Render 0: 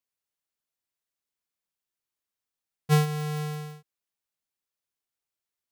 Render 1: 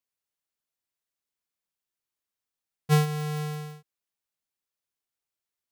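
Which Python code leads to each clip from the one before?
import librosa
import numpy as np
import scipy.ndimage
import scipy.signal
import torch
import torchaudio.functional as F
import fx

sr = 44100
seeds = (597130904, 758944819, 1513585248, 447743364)

y = x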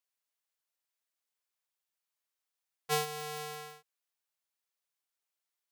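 y = scipy.signal.sosfilt(scipy.signal.butter(2, 530.0, 'highpass', fs=sr, output='sos'), x)
y = fx.dynamic_eq(y, sr, hz=1500.0, q=0.91, threshold_db=-42.0, ratio=4.0, max_db=-5)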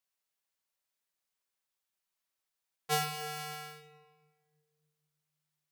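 y = fx.room_shoebox(x, sr, seeds[0], volume_m3=1400.0, walls='mixed', distance_m=1.1)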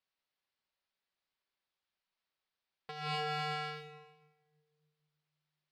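y = scipy.signal.sosfilt(scipy.signal.butter(6, 4900.0, 'lowpass', fs=sr, output='sos'), x)
y = fx.over_compress(y, sr, threshold_db=-41.0, ratio=-1.0)
y = fx.leveller(y, sr, passes=1)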